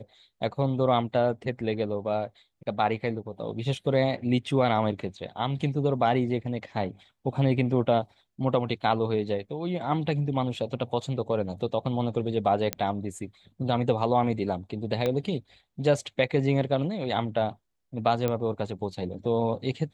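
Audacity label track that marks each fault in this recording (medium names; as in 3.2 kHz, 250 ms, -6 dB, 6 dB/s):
12.730000	12.730000	pop -10 dBFS
15.060000	15.060000	pop -15 dBFS
18.280000	18.280000	pop -14 dBFS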